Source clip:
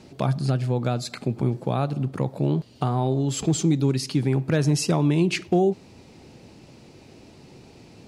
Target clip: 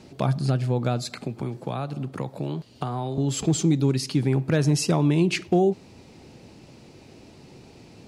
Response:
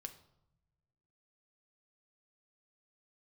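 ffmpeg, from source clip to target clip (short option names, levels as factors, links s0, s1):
-filter_complex "[0:a]asettb=1/sr,asplit=3[s0][s1][s2];[s0]atrim=end=1.104[s3];[s1]atrim=start=1.1:end=3.18,asetpts=PTS-STARTPTS,afade=t=in:d=0.004:c=qsin,afade=t=out:st=2.076:d=0.004:c=qsin,acrossover=split=240|830[s4][s5][s6];[s4]acompressor=threshold=0.0251:ratio=4[s7];[s5]acompressor=threshold=0.0224:ratio=4[s8];[s6]acompressor=threshold=0.0224:ratio=4[s9];[s7][s8][s9]amix=inputs=3:normalize=0[s10];[s2]atrim=start=3.176[s11];[s3][s10]acrossfade=d=0.004:c1=hsin:c2=qsin[s12];[s12][s11]acrossfade=d=0.004:c1=qsin:c2=hsin"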